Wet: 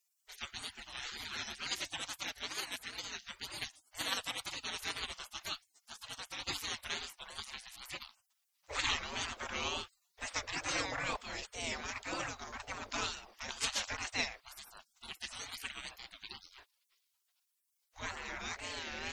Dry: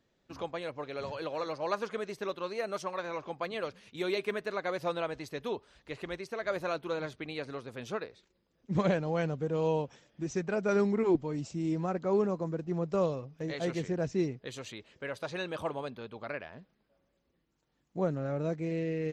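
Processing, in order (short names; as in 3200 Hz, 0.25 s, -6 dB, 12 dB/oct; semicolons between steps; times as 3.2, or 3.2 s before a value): spectral gate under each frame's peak -30 dB weak; wow and flutter 130 cents; gain +15.5 dB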